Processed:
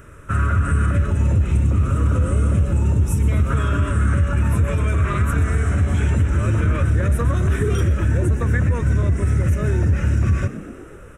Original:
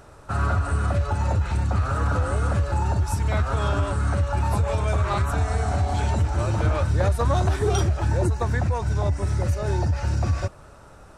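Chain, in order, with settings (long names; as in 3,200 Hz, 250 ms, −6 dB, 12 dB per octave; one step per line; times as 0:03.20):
0:01.06–0:03.50: parametric band 1,600 Hz −12.5 dB 0.71 octaves
brickwall limiter −16.5 dBFS, peak gain reduction 6 dB
phaser with its sweep stopped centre 1,900 Hz, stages 4
echo with shifted repeats 123 ms, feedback 64%, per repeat +65 Hz, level −15 dB
level +7 dB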